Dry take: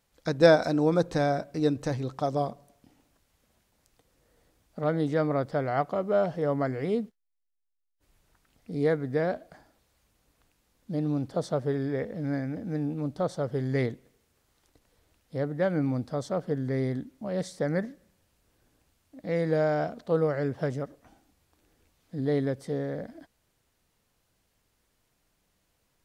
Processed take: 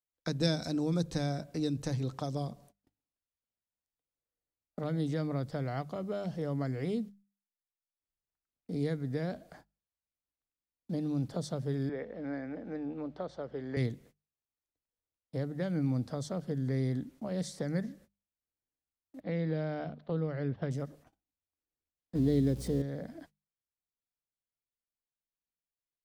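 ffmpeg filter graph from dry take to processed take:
ffmpeg -i in.wav -filter_complex "[0:a]asettb=1/sr,asplit=3[link_01][link_02][link_03];[link_01]atrim=end=11.894[link_04];[link_02]atrim=start=11.89:end=13.77,asetpts=PTS-STARTPTS,afade=type=in:duration=0.004:curve=qsin,afade=type=out:start_time=1.876:duration=0.004:curve=qsin,highpass=330,lowpass=2700,aeval=exprs='val(0)+0.000631*(sin(2*PI*60*n/s)+sin(2*PI*2*60*n/s)/2+sin(2*PI*3*60*n/s)/3+sin(2*PI*4*60*n/s)/4+sin(2*PI*5*60*n/s)/5)':channel_layout=same[link_05];[link_03]atrim=start=13.766[link_06];[link_04][link_05]acrossfade=duration=0.004:curve1=hsin:curve2=qsin[link_07];[link_07][link_06]acrossfade=duration=0.004:curve1=qsin:curve2=hsin,asettb=1/sr,asplit=3[link_08][link_09][link_10];[link_08]atrim=end=19.204[link_11];[link_09]atrim=start=19.2:end=20.71,asetpts=PTS-STARTPTS,afade=type=in:duration=0.004:curve=qsin,afade=type=out:start_time=1.506:duration=0.004:curve=qsin,lowpass=frequency=3800:width=0.5412,lowpass=frequency=3800:width=1.3066,agate=range=-8dB:threshold=-41dB:ratio=16:release=100:detection=peak[link_12];[link_10]atrim=start=20.706[link_13];[link_11][link_12]acrossfade=duration=0.004:curve1=hsin:curve2=qsin[link_14];[link_14][link_13]acrossfade=duration=0.004:curve1=qsin:curve2=hsin,asettb=1/sr,asplit=3[link_15][link_16][link_17];[link_15]atrim=end=22.154[link_18];[link_16]atrim=start=22.15:end=22.82,asetpts=PTS-STARTPTS,afade=type=in:duration=0.004:curve=qsin,afade=type=out:start_time=0.666:duration=0.004:curve=qsin,aeval=exprs='val(0)+0.5*0.0075*sgn(val(0))':channel_layout=same,equalizer=frequency=370:width_type=o:width=1.8:gain=9,aeval=exprs='val(0)+0.00891*(sin(2*PI*60*n/s)+sin(2*PI*2*60*n/s)/2+sin(2*PI*3*60*n/s)/3+sin(2*PI*4*60*n/s)/4+sin(2*PI*5*60*n/s)/5)':channel_layout=same[link_19];[link_17]atrim=start=22.816[link_20];[link_18][link_19]acrossfade=duration=0.004:curve1=hsin:curve2=qsin[link_21];[link_21][link_20]acrossfade=duration=0.004:curve1=qsin:curve2=hsin,agate=range=-32dB:threshold=-53dB:ratio=16:detection=peak,bandreject=frequency=50:width_type=h:width=6,bandreject=frequency=100:width_type=h:width=6,bandreject=frequency=150:width_type=h:width=6,bandreject=frequency=200:width_type=h:width=6,acrossover=split=250|3000[link_22][link_23][link_24];[link_23]acompressor=threshold=-38dB:ratio=6[link_25];[link_22][link_25][link_24]amix=inputs=3:normalize=0" out.wav

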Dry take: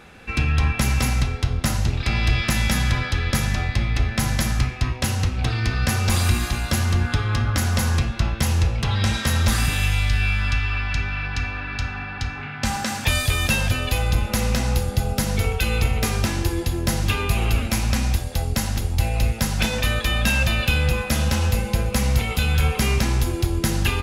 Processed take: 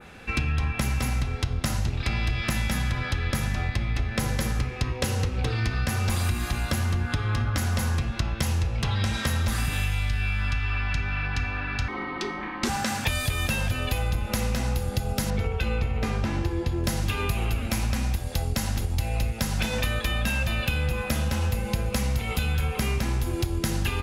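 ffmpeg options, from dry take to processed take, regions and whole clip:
ffmpeg -i in.wav -filter_complex "[0:a]asettb=1/sr,asplit=3[link_01][link_02][link_03];[link_01]atrim=end=4.174[link_04];[link_02]atrim=start=4.17:end=5.55,asetpts=PTS-STARTPTS,afade=type=in:duration=0.004:curve=qsin,afade=type=out:start_time=1.376:duration=0.004:curve=qsin,equalizer=frequency=470:width_type=o:width=0.54:gain=10,bandreject=frequency=660:width=9.3[link_05];[link_03]atrim=start=5.546[link_06];[link_04][link_05]acrossfade=duration=0.004:curve1=hsin:curve2=qsin[link_07];[link_07][link_06]acrossfade=duration=0.004:curve1=qsin:curve2=hsin,asettb=1/sr,asplit=3[link_08][link_09][link_10];[link_08]atrim=end=11.884[link_11];[link_09]atrim=start=11.88:end=12.69,asetpts=PTS-STARTPTS,afade=type=in:duration=0.004:curve=qsin,afade=type=out:start_time=0.806:duration=0.004:curve=qsin,lowshelf=frequency=160:width_type=q:width=1.5:gain=-7,afreqshift=-460[link_12];[link_10]atrim=start=12.686[link_13];[link_11][link_12]acrossfade=duration=0.004:curve1=hsin:curve2=qsin[link_14];[link_14][link_13]acrossfade=duration=0.004:curve1=qsin:curve2=hsin,asettb=1/sr,asplit=3[link_15][link_16][link_17];[link_15]atrim=end=15.304[link_18];[link_16]atrim=start=15.3:end=16.84,asetpts=PTS-STARTPTS,afade=type=in:duration=0.004:curve=qsin,afade=type=out:start_time=1.536:duration=0.004:curve=qsin,aemphasis=mode=reproduction:type=75fm,asplit=2[link_19][link_20];[link_20]adelay=14,volume=-12dB[link_21];[link_19][link_21]amix=inputs=2:normalize=0,atrim=end_sample=67914[link_22];[link_17]atrim=start=16.836[link_23];[link_18][link_22]acrossfade=duration=0.004:curve1=hsin:curve2=qsin[link_24];[link_24][link_23]acrossfade=duration=0.004:curve1=qsin:curve2=hsin,adynamicequalizer=threshold=0.0112:dfrequency=5400:dqfactor=0.72:tfrequency=5400:tqfactor=0.72:attack=5:release=100:ratio=0.375:range=2:mode=cutabove:tftype=bell,acompressor=threshold=-22dB:ratio=6" out.wav

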